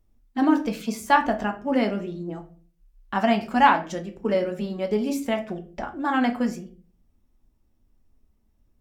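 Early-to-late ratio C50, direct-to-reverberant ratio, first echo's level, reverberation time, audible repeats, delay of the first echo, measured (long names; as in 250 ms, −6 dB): 13.0 dB, 4.0 dB, no echo audible, 0.45 s, no echo audible, no echo audible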